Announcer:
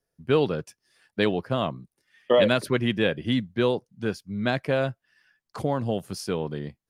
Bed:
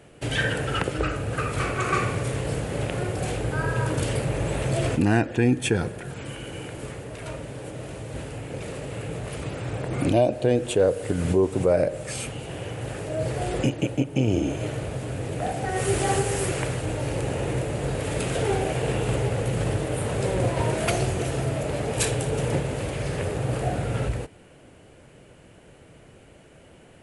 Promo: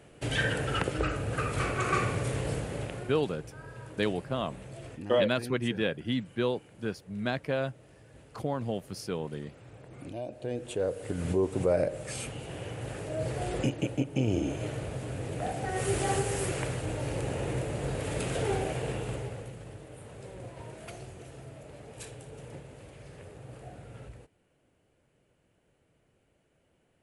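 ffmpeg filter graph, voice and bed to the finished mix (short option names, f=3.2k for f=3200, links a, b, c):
-filter_complex "[0:a]adelay=2800,volume=-6dB[a];[1:a]volume=10.5dB,afade=t=out:st=2.46:d=0.8:silence=0.158489,afade=t=in:st=10.14:d=1.45:silence=0.188365,afade=t=out:st=18.56:d=1.03:silence=0.188365[b];[a][b]amix=inputs=2:normalize=0"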